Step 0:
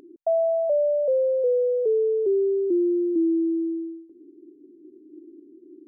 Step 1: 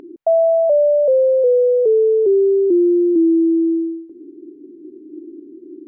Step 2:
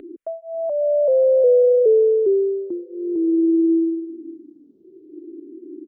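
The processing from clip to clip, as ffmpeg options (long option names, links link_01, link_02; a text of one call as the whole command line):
ffmpeg -i in.wav -filter_complex "[0:a]bass=frequency=250:gain=1,treble=frequency=4000:gain=-12,asplit=2[link_01][link_02];[link_02]alimiter=limit=-24dB:level=0:latency=1,volume=1dB[link_03];[link_01][link_03]amix=inputs=2:normalize=0,volume=4dB" out.wav
ffmpeg -i in.wav -filter_complex "[0:a]aecho=1:1:543|1086|1629:0.0891|0.0339|0.0129,asplit=2[link_01][link_02];[link_02]afreqshift=-0.55[link_03];[link_01][link_03]amix=inputs=2:normalize=1" out.wav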